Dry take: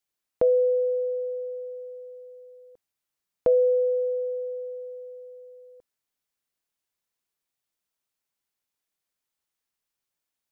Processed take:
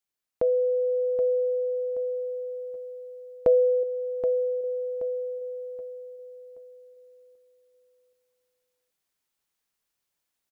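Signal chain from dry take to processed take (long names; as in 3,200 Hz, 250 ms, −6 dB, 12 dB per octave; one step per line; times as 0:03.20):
speech leveller within 3 dB 0.5 s
0:03.83–0:04.64: parametric band 490 Hz −6 dB
repeating echo 776 ms, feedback 35%, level −9 dB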